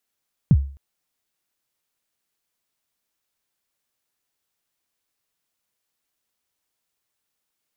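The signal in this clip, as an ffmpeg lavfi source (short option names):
-f lavfi -i "aevalsrc='0.447*pow(10,-3*t/0.42)*sin(2*PI*(190*0.049/log(69/190)*(exp(log(69/190)*min(t,0.049)/0.049)-1)+69*max(t-0.049,0)))':d=0.26:s=44100"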